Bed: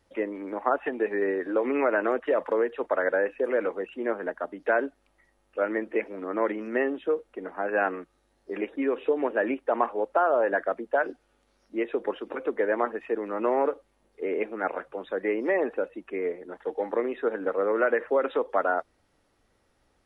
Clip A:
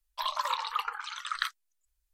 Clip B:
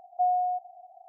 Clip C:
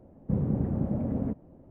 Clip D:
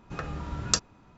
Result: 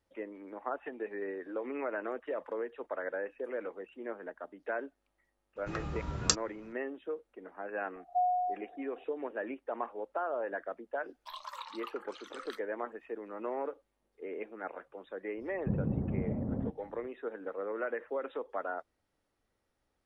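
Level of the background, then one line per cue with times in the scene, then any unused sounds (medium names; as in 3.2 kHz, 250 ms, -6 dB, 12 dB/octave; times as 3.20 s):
bed -12 dB
5.56 s: add D -3 dB
7.96 s: add B -6.5 dB + tilt EQ -4.5 dB/octave
11.08 s: add A -13 dB + peak limiter -14 dBFS
15.37 s: add C -5 dB + low-pass 1.4 kHz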